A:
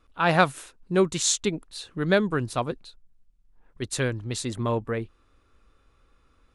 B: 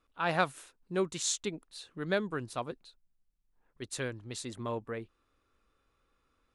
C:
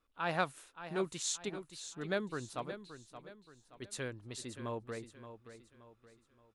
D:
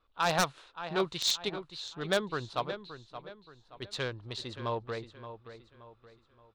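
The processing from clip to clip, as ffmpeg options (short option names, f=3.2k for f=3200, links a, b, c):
-af "lowshelf=f=140:g=-8,volume=-8.5dB"
-af "aecho=1:1:574|1148|1722|2296:0.266|0.104|0.0405|0.0158,volume=-4.5dB"
-af "adynamicsmooth=sensitivity=6:basefreq=2.5k,equalizer=f=250:t=o:w=1:g=-7,equalizer=f=1k:t=o:w=1:g=3,equalizer=f=2k:t=o:w=1:g=-3,equalizer=f=4k:t=o:w=1:g=12,aeval=exprs='0.0631*(abs(mod(val(0)/0.0631+3,4)-2)-1)':c=same,volume=7dB"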